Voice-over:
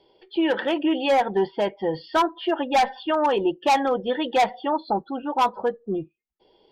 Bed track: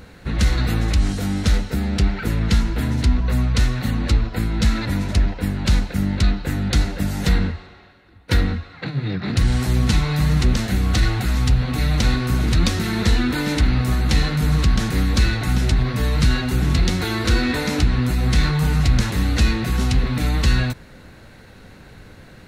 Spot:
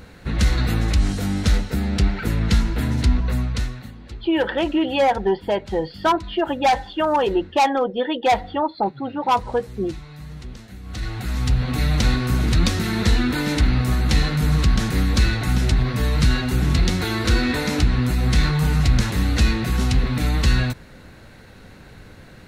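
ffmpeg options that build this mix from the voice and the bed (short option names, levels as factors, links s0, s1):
-filter_complex "[0:a]adelay=3900,volume=1.26[s0];[1:a]volume=7.94,afade=t=out:st=3.15:d=0.78:silence=0.11885,afade=t=in:st=10.83:d=0.89:silence=0.11885[s1];[s0][s1]amix=inputs=2:normalize=0"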